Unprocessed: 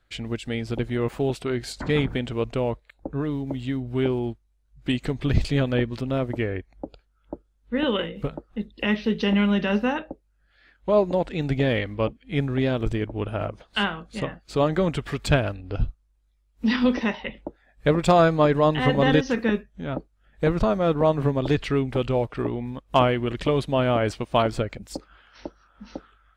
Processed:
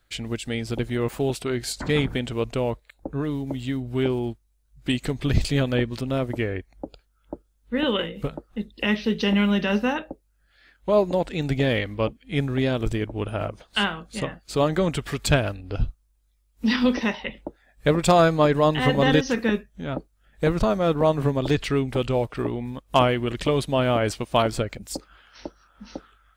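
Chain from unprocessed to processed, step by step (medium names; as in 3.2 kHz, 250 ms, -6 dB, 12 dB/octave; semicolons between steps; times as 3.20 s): treble shelf 5.9 kHz +12 dB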